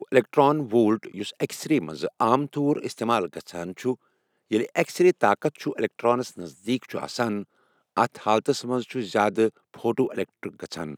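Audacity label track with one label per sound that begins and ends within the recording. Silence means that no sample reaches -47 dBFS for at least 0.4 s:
4.510000	7.440000	sound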